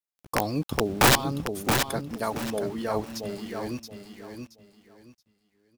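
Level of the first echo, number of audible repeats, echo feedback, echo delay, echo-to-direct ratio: -6.0 dB, 3, 25%, 0.675 s, -5.5 dB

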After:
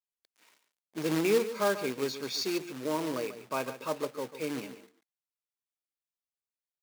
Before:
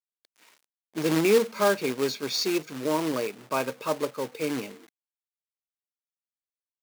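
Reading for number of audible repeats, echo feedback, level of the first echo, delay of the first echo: 1, no steady repeat, -12.5 dB, 0.141 s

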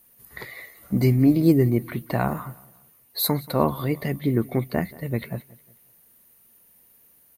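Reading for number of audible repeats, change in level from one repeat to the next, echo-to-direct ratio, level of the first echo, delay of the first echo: 2, -8.0 dB, -21.5 dB, -22.0 dB, 0.181 s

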